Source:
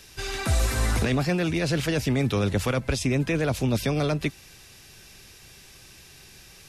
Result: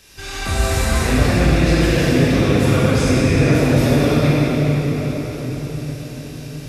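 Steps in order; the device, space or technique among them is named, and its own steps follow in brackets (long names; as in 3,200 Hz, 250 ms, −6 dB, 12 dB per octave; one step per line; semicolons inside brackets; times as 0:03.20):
cathedral (convolution reverb RT60 5.6 s, pre-delay 17 ms, DRR −10 dB)
level −1.5 dB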